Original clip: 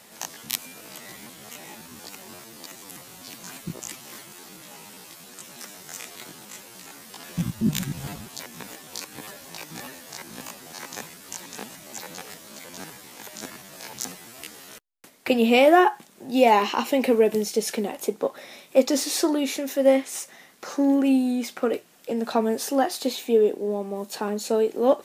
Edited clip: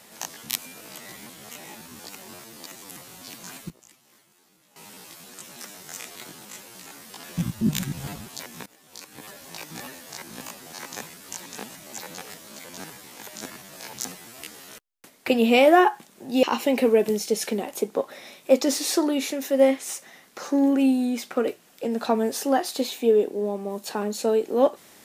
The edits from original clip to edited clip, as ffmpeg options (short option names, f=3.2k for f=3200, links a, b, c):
-filter_complex "[0:a]asplit=5[a][b][c][d][e];[a]atrim=end=3.7,asetpts=PTS-STARTPTS,afade=t=out:st=3.29:d=0.41:c=log:silence=0.133352[f];[b]atrim=start=3.7:end=4.76,asetpts=PTS-STARTPTS,volume=-17.5dB[g];[c]atrim=start=4.76:end=8.66,asetpts=PTS-STARTPTS,afade=t=in:d=0.41:c=log:silence=0.133352,afade=t=out:st=3.896:d=0.004:c=hsin:silence=0.0944061[h];[d]atrim=start=8.66:end=16.432,asetpts=PTS-STARTPTS,afade=t=in:d=0.87:silence=0.0944061[i];[e]atrim=start=16.688[j];[f][g][h][i]concat=n=4:v=0:a=1[k];[k][j]acrossfade=d=0.004:c1=hsin:c2=hsin"